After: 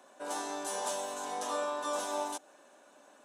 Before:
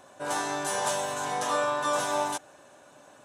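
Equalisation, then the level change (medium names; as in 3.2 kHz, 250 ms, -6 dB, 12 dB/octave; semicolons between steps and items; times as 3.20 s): steep high-pass 200 Hz 36 dB/octave; dynamic bell 1.8 kHz, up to -6 dB, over -43 dBFS, Q 1.1; -5.5 dB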